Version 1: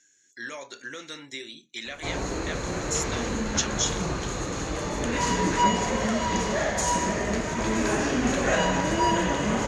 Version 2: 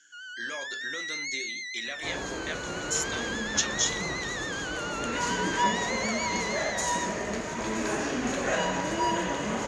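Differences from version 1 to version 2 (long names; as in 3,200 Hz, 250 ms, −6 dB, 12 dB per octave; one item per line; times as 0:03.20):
first sound: unmuted
second sound −3.5 dB
reverb: on, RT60 2.4 s
master: add low-shelf EQ 130 Hz −10 dB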